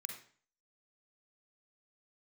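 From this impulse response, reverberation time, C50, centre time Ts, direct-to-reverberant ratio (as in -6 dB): 0.45 s, 5.0 dB, 25 ms, 3.0 dB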